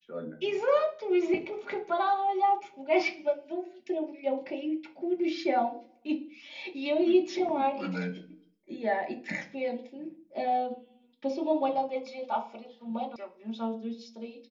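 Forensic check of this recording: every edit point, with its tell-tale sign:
13.16 sound cut off

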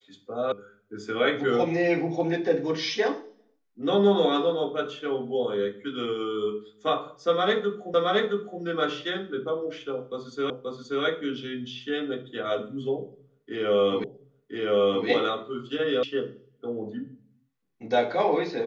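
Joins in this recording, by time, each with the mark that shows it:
0.52 sound cut off
7.94 repeat of the last 0.67 s
10.5 repeat of the last 0.53 s
14.04 repeat of the last 1.02 s
16.03 sound cut off

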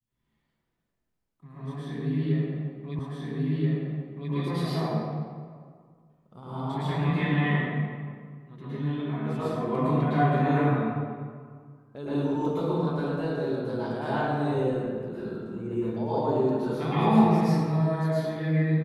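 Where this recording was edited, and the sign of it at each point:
2.99 repeat of the last 1.33 s

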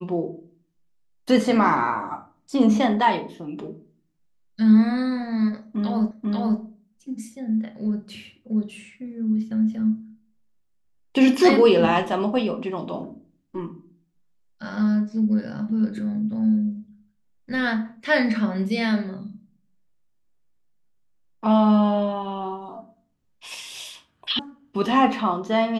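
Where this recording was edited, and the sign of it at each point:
6.11 repeat of the last 0.49 s
24.39 sound cut off

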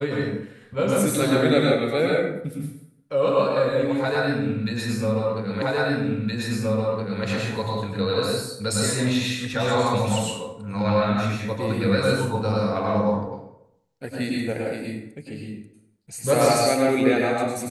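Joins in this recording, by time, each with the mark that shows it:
5.62 repeat of the last 1.62 s

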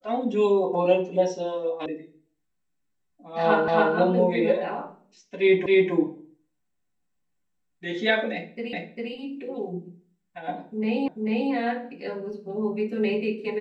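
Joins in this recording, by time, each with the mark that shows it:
1.86 sound cut off
3.68 repeat of the last 0.28 s
5.66 repeat of the last 0.27 s
8.73 repeat of the last 0.4 s
11.08 repeat of the last 0.44 s

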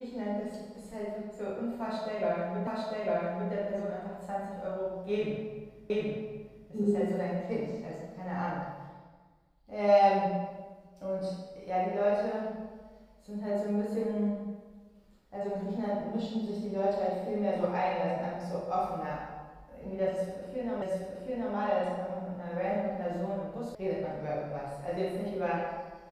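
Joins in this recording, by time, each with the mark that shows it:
2.67 repeat of the last 0.85 s
5.9 repeat of the last 0.78 s
20.82 repeat of the last 0.73 s
23.75 sound cut off

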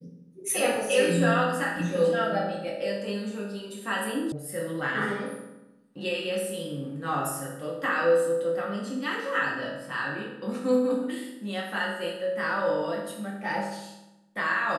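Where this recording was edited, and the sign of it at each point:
4.32 sound cut off

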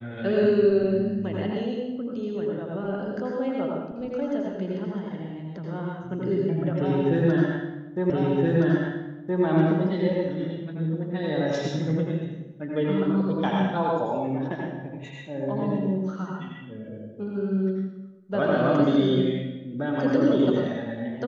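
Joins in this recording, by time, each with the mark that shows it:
8.1 repeat of the last 1.32 s

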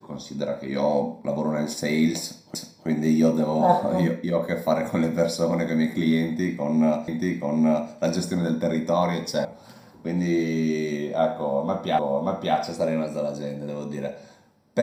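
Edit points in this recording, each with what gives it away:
2.55 repeat of the last 0.32 s
7.08 repeat of the last 0.83 s
9.45 sound cut off
11.99 repeat of the last 0.58 s

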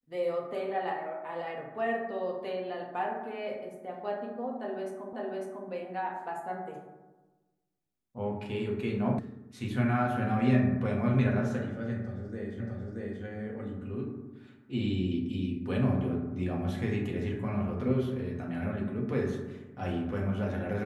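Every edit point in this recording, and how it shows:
5.13 repeat of the last 0.55 s
9.19 sound cut off
12.6 repeat of the last 0.63 s

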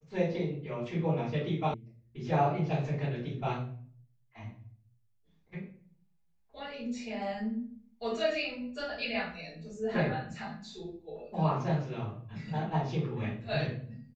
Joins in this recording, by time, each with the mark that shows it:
1.74 sound cut off

